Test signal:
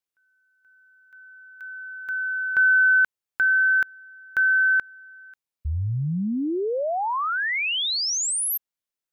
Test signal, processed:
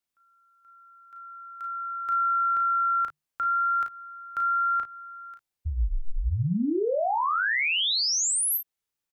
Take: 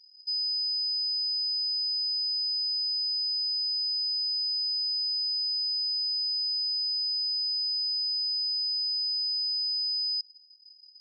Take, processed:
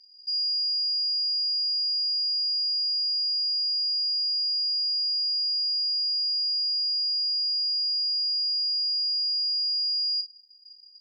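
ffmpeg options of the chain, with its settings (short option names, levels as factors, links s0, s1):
-af "alimiter=level_in=1.12:limit=0.0631:level=0:latency=1:release=128,volume=0.891,afreqshift=-150,aecho=1:1:35|53:0.501|0.251,volume=1.19"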